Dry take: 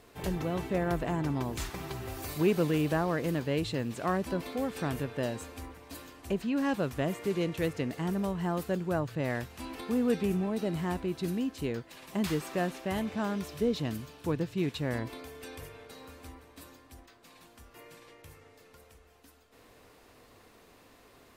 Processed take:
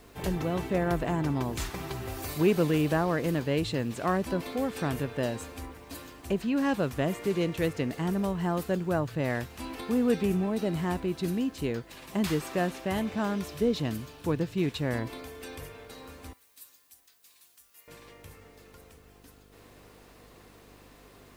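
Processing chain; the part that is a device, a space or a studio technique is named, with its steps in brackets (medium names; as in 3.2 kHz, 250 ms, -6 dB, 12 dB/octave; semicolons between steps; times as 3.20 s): video cassette with head-switching buzz (mains buzz 50 Hz, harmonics 10, -61 dBFS -3 dB/octave; white noise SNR 39 dB); 16.33–17.88 s: pre-emphasis filter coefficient 0.97; trim +2.5 dB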